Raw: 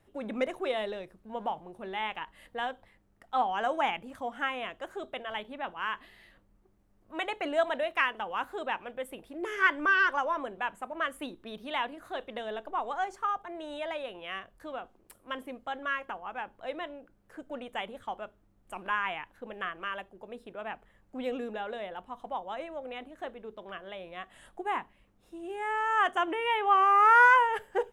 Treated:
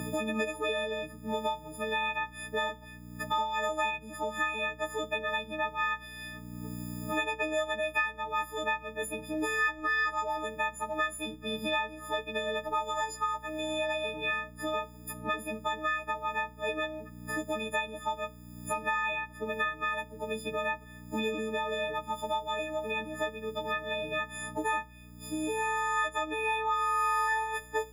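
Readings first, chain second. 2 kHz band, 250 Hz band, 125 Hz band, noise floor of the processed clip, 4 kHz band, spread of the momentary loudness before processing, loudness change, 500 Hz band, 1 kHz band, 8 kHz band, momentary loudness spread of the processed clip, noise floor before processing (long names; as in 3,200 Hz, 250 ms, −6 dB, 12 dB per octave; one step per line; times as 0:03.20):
−1.5 dB, +3.0 dB, can't be measured, −49 dBFS, +3.0 dB, 18 LU, −2.0 dB, +1.5 dB, −3.0 dB, +13.5 dB, 8 LU, −66 dBFS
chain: every partial snapped to a pitch grid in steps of 6 semitones
mains hum 60 Hz, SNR 22 dB
multiband upward and downward compressor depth 100%
level −3 dB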